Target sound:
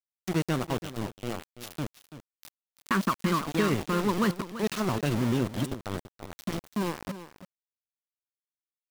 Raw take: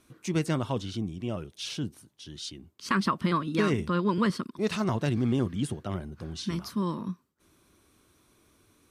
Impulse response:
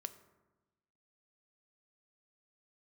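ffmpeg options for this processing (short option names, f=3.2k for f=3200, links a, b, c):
-af "aeval=exprs='val(0)*gte(abs(val(0)),0.0355)':c=same,aecho=1:1:335:0.224"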